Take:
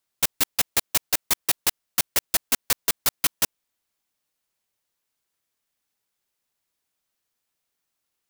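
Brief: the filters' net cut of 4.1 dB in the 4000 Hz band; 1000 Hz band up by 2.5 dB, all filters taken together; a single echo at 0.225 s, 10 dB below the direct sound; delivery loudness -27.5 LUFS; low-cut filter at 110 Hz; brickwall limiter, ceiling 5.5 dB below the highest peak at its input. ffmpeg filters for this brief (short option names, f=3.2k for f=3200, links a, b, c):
-af "highpass=110,equalizer=f=1k:t=o:g=3.5,equalizer=f=4k:t=o:g=-5.5,alimiter=limit=-12.5dB:level=0:latency=1,aecho=1:1:225:0.316,volume=-0.5dB"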